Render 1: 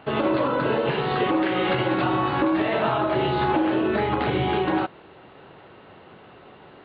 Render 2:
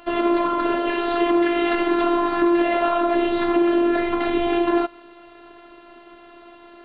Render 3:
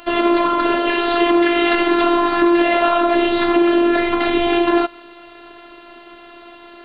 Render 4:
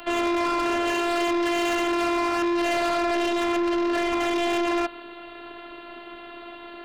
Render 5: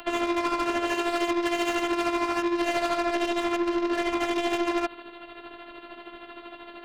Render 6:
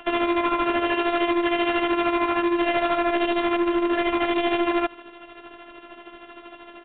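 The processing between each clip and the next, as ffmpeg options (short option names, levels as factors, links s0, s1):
-filter_complex "[0:a]acrossover=split=4200[s0][s1];[s1]acompressor=threshold=0.00112:ratio=4:attack=1:release=60[s2];[s0][s2]amix=inputs=2:normalize=0,afftfilt=real='hypot(re,im)*cos(PI*b)':imag='0':win_size=512:overlap=0.75,volume=1.88"
-af "highshelf=f=2200:g=8,volume=1.5"
-filter_complex "[0:a]acrossover=split=260|410|2000[s0][s1][s2][s3];[s0]alimiter=level_in=1.68:limit=0.0631:level=0:latency=1,volume=0.596[s4];[s4][s1][s2][s3]amix=inputs=4:normalize=0,asoftclip=type=tanh:threshold=0.0794"
-af "tremolo=f=13:d=0.57"
-filter_complex "[0:a]asplit=2[s0][s1];[s1]acrusher=bits=4:mix=0:aa=0.5,volume=0.562[s2];[s0][s2]amix=inputs=2:normalize=0,aresample=8000,aresample=44100"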